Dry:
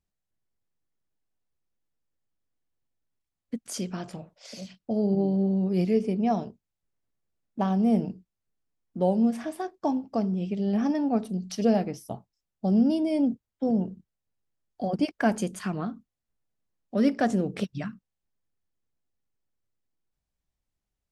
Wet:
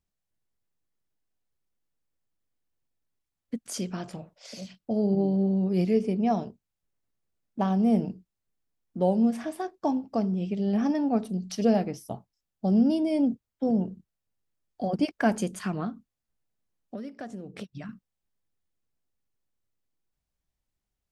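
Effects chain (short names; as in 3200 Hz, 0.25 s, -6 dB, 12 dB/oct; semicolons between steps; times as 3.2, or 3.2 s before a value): 15.89–17.89 compressor 16:1, threshold -35 dBFS, peak gain reduction 18.5 dB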